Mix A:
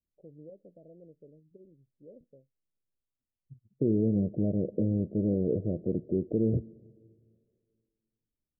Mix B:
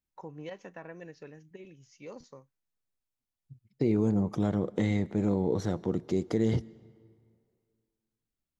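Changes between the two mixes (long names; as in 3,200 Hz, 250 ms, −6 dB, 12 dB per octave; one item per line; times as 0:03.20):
first voice +6.5 dB
master: remove Butterworth low-pass 650 Hz 96 dB per octave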